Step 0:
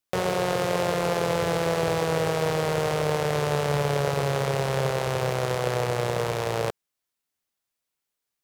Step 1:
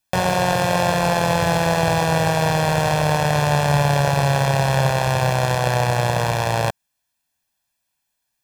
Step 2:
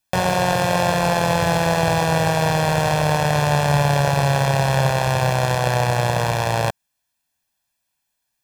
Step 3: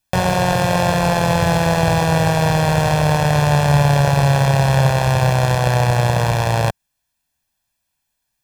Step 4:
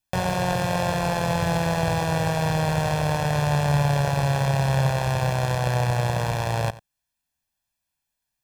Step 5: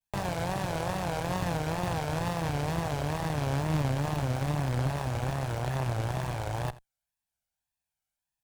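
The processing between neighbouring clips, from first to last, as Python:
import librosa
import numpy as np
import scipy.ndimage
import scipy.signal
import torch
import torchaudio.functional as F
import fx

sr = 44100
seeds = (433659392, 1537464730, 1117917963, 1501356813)

y1 = x + 0.68 * np.pad(x, (int(1.2 * sr / 1000.0), 0))[:len(x)]
y1 = F.gain(torch.from_numpy(y1), 6.0).numpy()
y2 = y1
y3 = fx.low_shelf(y2, sr, hz=130.0, db=8.5)
y3 = F.gain(torch.from_numpy(y3), 1.0).numpy()
y4 = y3 + 10.0 ** (-18.0 / 20.0) * np.pad(y3, (int(89 * sr / 1000.0), 0))[:len(y3)]
y4 = F.gain(torch.from_numpy(y4), -7.5).numpy()
y5 = fx.lower_of_two(y4, sr, delay_ms=1.3)
y5 = fx.wow_flutter(y5, sr, seeds[0], rate_hz=2.1, depth_cents=140.0)
y5 = F.gain(torch.from_numpy(y5), -5.5).numpy()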